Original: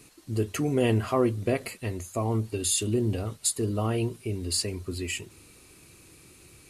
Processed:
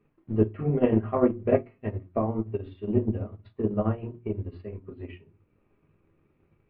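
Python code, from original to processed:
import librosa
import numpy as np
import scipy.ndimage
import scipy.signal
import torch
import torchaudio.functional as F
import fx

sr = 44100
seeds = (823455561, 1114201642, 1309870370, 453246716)

y = fx.room_shoebox(x, sr, seeds[0], volume_m3=130.0, walls='furnished', distance_m=1.3)
y = fx.transient(y, sr, attack_db=9, sustain_db=-5)
y = scipy.ndimage.gaussian_filter1d(y, 4.5, mode='constant')
y = fx.hum_notches(y, sr, base_hz=60, count=6)
y = fx.upward_expand(y, sr, threshold_db=-39.0, expansion=1.5)
y = y * 10.0 ** (-1.0 / 20.0)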